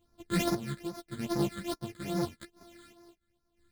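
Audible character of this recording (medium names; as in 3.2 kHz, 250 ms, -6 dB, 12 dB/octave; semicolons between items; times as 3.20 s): a buzz of ramps at a fixed pitch in blocks of 128 samples; phasing stages 8, 2.4 Hz, lowest notch 760–2900 Hz; chopped level 0.84 Hz, depth 60%, duty 45%; a shimmering, thickened sound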